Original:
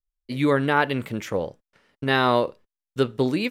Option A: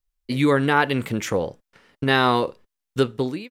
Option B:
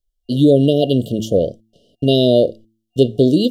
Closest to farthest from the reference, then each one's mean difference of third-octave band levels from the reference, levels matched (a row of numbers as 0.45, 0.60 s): A, B; 3.0, 7.5 dB